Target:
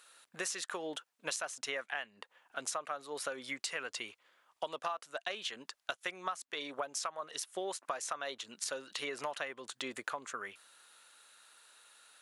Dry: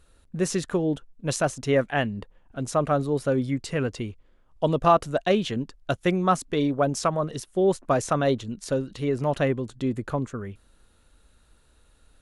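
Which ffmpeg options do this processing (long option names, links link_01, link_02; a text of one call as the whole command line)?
ffmpeg -i in.wav -af "highpass=1100,acompressor=threshold=-42dB:ratio=10,volume=7dB" out.wav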